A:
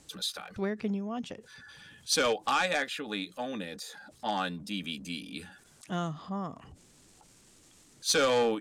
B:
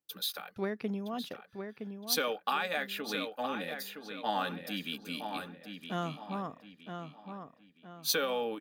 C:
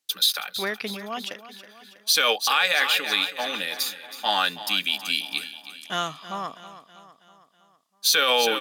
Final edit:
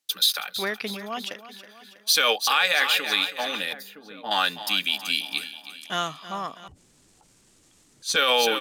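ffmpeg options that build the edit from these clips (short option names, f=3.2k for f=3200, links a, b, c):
-filter_complex "[2:a]asplit=3[a][b][c];[a]atrim=end=3.732[d];[1:a]atrim=start=3.728:end=4.312[e];[b]atrim=start=4.308:end=6.682[f];[0:a]atrim=start=6.678:end=8.162[g];[c]atrim=start=8.158[h];[d][e]acrossfade=d=0.004:c1=hsin:c2=hsin[i];[i][f]acrossfade=d=0.004:c1=hsin:c2=hsin[j];[j][g]acrossfade=d=0.004:c1=hsin:c2=hsin[k];[k][h]acrossfade=d=0.004:c1=hsin:c2=hsin"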